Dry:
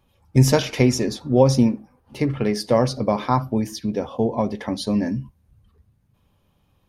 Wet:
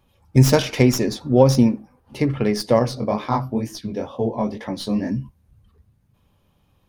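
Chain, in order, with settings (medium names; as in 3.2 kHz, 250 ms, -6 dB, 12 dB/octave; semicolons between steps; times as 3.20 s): tracing distortion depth 0.04 ms; 2.79–5.10 s: chorus 2.1 Hz, delay 16 ms, depth 7.6 ms; trim +1.5 dB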